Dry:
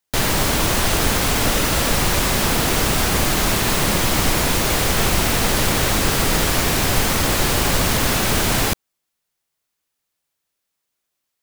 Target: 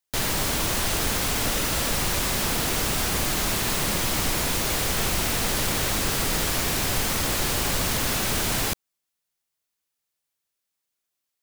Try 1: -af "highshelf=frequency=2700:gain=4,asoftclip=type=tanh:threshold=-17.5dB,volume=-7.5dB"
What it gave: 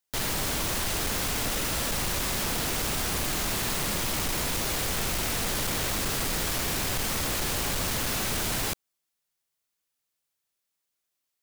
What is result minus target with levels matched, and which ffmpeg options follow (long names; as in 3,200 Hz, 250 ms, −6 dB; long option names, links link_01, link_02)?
soft clipping: distortion +15 dB
-af "highshelf=frequency=2700:gain=4,asoftclip=type=tanh:threshold=-5.5dB,volume=-7.5dB"